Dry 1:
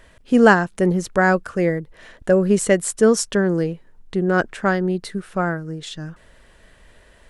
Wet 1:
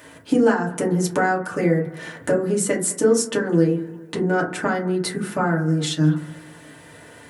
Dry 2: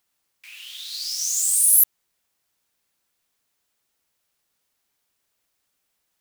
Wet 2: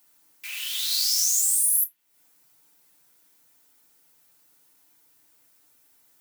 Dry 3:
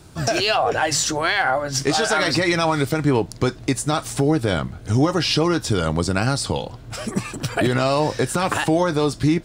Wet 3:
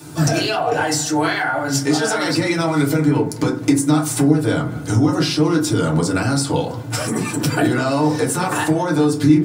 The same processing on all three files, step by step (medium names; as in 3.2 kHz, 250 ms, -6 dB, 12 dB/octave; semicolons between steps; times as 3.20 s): high-pass 110 Hz 24 dB/octave; treble shelf 7.3 kHz +11.5 dB; compression 12:1, threshold -24 dBFS; on a send: bucket-brigade echo 205 ms, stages 4096, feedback 52%, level -20.5 dB; on the sum: FDN reverb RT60 0.39 s, low-frequency decay 1.55×, high-frequency decay 0.35×, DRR -3.5 dB; trim +3 dB